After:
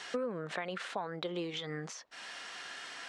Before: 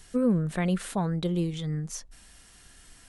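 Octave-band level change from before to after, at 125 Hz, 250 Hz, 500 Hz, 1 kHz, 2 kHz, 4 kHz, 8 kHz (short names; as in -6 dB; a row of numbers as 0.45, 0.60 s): -18.0, -15.0, -5.5, -3.0, +1.5, +1.5, -8.5 dB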